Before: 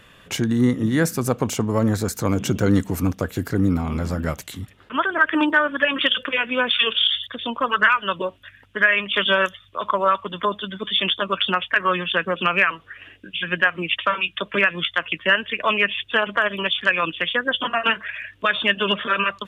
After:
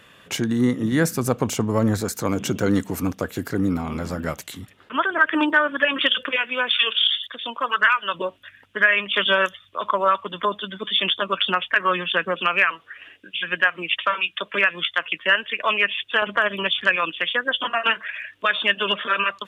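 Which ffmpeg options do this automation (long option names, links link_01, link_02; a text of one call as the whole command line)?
ffmpeg -i in.wav -af "asetnsamples=nb_out_samples=441:pad=0,asendcmd='0.92 highpass f 50;2.01 highpass f 190;6.36 highpass f 750;8.14 highpass f 220;12.39 highpass f 500;16.22 highpass f 120;16.96 highpass f 430',highpass=frequency=150:poles=1" out.wav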